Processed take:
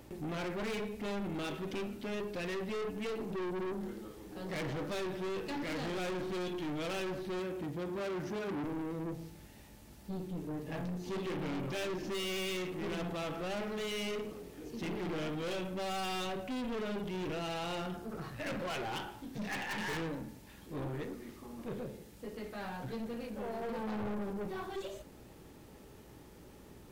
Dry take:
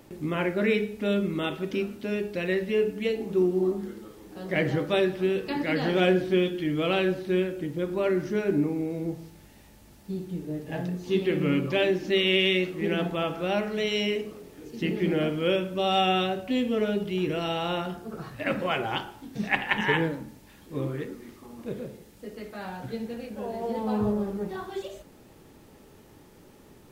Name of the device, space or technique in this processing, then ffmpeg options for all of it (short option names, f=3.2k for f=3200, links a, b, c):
valve amplifier with mains hum: -filter_complex "[0:a]aeval=exprs='(tanh(50.1*val(0)+0.3)-tanh(0.3))/50.1':c=same,aeval=exprs='val(0)+0.001*(sin(2*PI*60*n/s)+sin(2*PI*2*60*n/s)/2+sin(2*PI*3*60*n/s)/3+sin(2*PI*4*60*n/s)/4+sin(2*PI*5*60*n/s)/5)':c=same,asettb=1/sr,asplit=3[a][b][c];[a]atrim=end=7.394[d];[b]atrim=start=7.39:end=8.65,asetpts=PTS-STARTPTS,afade=t=in:d=0.004:c=qsin,afade=t=out:st=1.256:d=0.004:c=qsin,highpass=59[e];[c]atrim=start=8.646[f];[d][e]acrossfade=d=0.004:c1=hsin:c2=qsin[g];[g][f]acrossfade=d=0.004:c1=qsin:c2=hsin,volume=-1.5dB"